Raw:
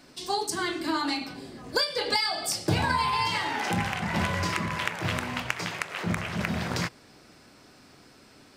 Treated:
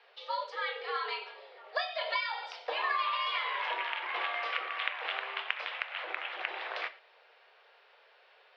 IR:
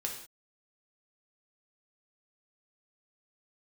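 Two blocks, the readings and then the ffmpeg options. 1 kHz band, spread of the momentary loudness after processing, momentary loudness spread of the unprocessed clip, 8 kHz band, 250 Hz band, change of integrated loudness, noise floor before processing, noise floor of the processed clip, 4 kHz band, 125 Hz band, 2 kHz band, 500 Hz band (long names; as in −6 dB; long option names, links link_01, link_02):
−5.0 dB, 7 LU, 6 LU, below −30 dB, below −30 dB, −6.0 dB, −55 dBFS, −63 dBFS, −7.0 dB, below −40 dB, −3.5 dB, −7.0 dB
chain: -filter_complex "[0:a]aemphasis=mode=production:type=bsi,asplit=2[link_01][link_02];[1:a]atrim=start_sample=2205,atrim=end_sample=6174,lowpass=6000[link_03];[link_02][link_03]afir=irnorm=-1:irlink=0,volume=-8.5dB[link_04];[link_01][link_04]amix=inputs=2:normalize=0,highpass=frequency=330:width_type=q:width=0.5412,highpass=frequency=330:width_type=q:width=1.307,lowpass=frequency=3400:width_type=q:width=0.5176,lowpass=frequency=3400:width_type=q:width=0.7071,lowpass=frequency=3400:width_type=q:width=1.932,afreqshift=150,volume=-7dB"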